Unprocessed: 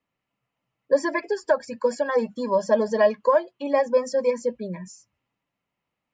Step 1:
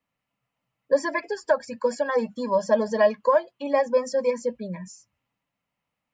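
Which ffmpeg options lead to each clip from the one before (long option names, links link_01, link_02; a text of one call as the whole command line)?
ffmpeg -i in.wav -af "equalizer=frequency=370:width_type=o:width=0.4:gain=-7.5" out.wav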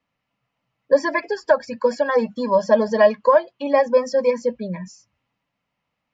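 ffmpeg -i in.wav -af "lowpass=frequency=5900:width=0.5412,lowpass=frequency=5900:width=1.3066,volume=5dB" out.wav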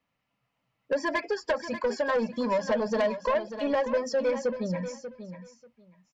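ffmpeg -i in.wav -af "acompressor=threshold=-17dB:ratio=3,asoftclip=type=tanh:threshold=-18.5dB,aecho=1:1:589|1178:0.282|0.0479,volume=-2dB" out.wav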